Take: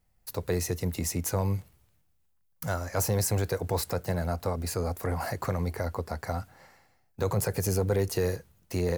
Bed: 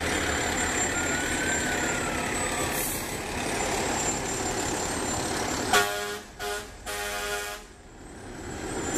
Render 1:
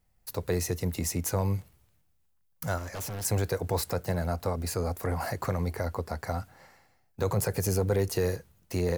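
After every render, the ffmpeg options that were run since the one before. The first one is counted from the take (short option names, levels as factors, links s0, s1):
-filter_complex "[0:a]asettb=1/sr,asplit=3[s0][s1][s2];[s0]atrim=end=2.784[s3];[s1]atrim=start=2.78:end=3.25,asetpts=PTS-STARTPTS,afade=t=in:d=0.004:c=qsin,afade=t=out:st=0.466:d=0.004:c=qsin,volume=53.1,asoftclip=hard,volume=0.0188[s4];[s2]atrim=start=3.246[s5];[s3][s4]acrossfade=d=0.004:c1=hsin:c2=qsin[s6];[s6][s5]acrossfade=d=0.004:c1=qsin:c2=hsin"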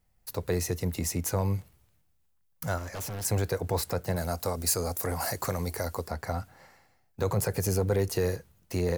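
-filter_complex "[0:a]asettb=1/sr,asplit=3[s0][s1][s2];[s0]atrim=end=4.164[s3];[s1]atrim=start=4.16:end=6.08,asetpts=PTS-STARTPTS,afade=t=in:d=0.004:c=qsin,afade=t=out:st=1.916:d=0.004:c=qsin,bass=f=250:g=-3,treble=f=4000:g=11[s4];[s2]atrim=start=6.076[s5];[s3][s4]acrossfade=d=0.004:c1=hsin:c2=qsin[s6];[s6][s5]acrossfade=d=0.004:c1=qsin:c2=hsin"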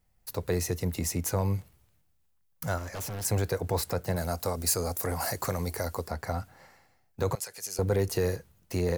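-filter_complex "[0:a]asettb=1/sr,asplit=3[s0][s1][s2];[s0]atrim=end=7.354[s3];[s1]atrim=start=7.35:end=7.79,asetpts=PTS-STARTPTS,afade=t=in:d=0.004:c=qsin,afade=t=out:st=0.436:d=0.004:c=qsin,bandpass=f=6100:t=q:w=0.67[s4];[s2]atrim=start=7.786[s5];[s3][s4]acrossfade=d=0.004:c1=hsin:c2=qsin[s6];[s6][s5]acrossfade=d=0.004:c1=qsin:c2=hsin"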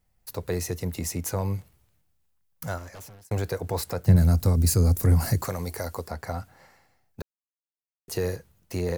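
-filter_complex "[0:a]asplit=3[s0][s1][s2];[s0]afade=t=out:st=4.06:d=0.02[s3];[s1]asubboost=boost=8.5:cutoff=240,afade=t=in:st=4.06:d=0.02,afade=t=out:st=5.41:d=0.02[s4];[s2]afade=t=in:st=5.41:d=0.02[s5];[s3][s4][s5]amix=inputs=3:normalize=0,asplit=4[s6][s7][s8][s9];[s6]atrim=end=3.31,asetpts=PTS-STARTPTS,afade=t=out:st=2.63:d=0.68[s10];[s7]atrim=start=3.31:end=7.22,asetpts=PTS-STARTPTS,afade=t=in:d=0.004:c=hsin,afade=t=out:st=3.906:d=0.004:c=hsin[s11];[s8]atrim=start=7.22:end=8.08,asetpts=PTS-STARTPTS,volume=0[s12];[s9]atrim=start=8.08,asetpts=PTS-STARTPTS,afade=t=in:d=0.004:c=hsin[s13];[s10][s11][s12][s13]concat=n=4:v=0:a=1"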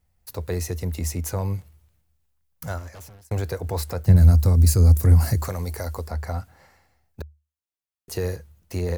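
-af "equalizer=f=75:t=o:w=0.31:g=14"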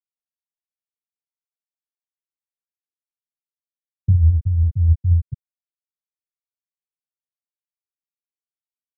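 -af "afftfilt=real='re*gte(hypot(re,im),1.58)':imag='im*gte(hypot(re,im),1.58)':win_size=1024:overlap=0.75,agate=range=0.0224:threshold=0.0398:ratio=3:detection=peak"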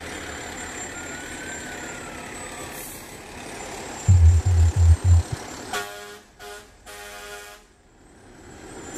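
-filter_complex "[1:a]volume=0.447[s0];[0:a][s0]amix=inputs=2:normalize=0"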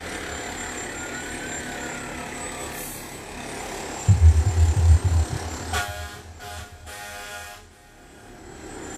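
-filter_complex "[0:a]asplit=2[s0][s1];[s1]adelay=28,volume=0.75[s2];[s0][s2]amix=inputs=2:normalize=0,aecho=1:1:837|1674|2511:0.141|0.0537|0.0204"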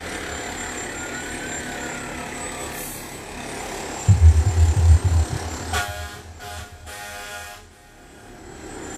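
-af "volume=1.26"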